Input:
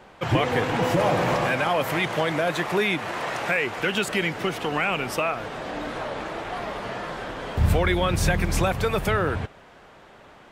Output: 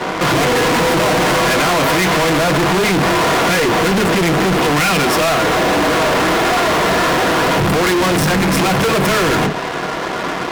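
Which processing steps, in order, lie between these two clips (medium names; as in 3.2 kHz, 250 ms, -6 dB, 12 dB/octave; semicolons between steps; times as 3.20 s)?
in parallel at +2 dB: compression, threshold -31 dBFS, peak gain reduction 15.5 dB; 2.52–4.63 s: on the sum: tilt EQ -2.5 dB/octave; Chebyshev shaper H 8 -21 dB, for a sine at -5 dBFS; reverberation RT60 0.20 s, pre-delay 3 ms, DRR 2.5 dB; fuzz box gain 31 dB, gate -38 dBFS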